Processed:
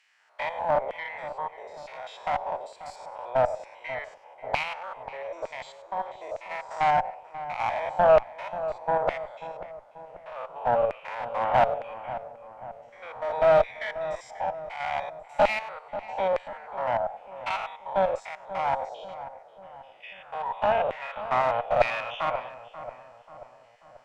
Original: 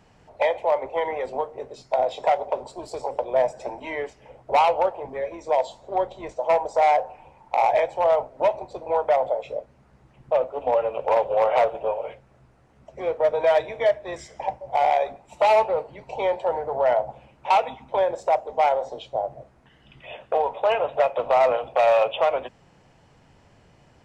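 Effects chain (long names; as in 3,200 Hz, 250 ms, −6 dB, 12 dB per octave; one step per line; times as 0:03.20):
spectrum averaged block by block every 100 ms
auto-filter high-pass saw down 1.1 Hz 570–2,200 Hz
harmonic generator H 4 −18 dB, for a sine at −4.5 dBFS
feedback echo with a low-pass in the loop 537 ms, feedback 54%, low-pass 1,500 Hz, level −12.5 dB
level −3.5 dB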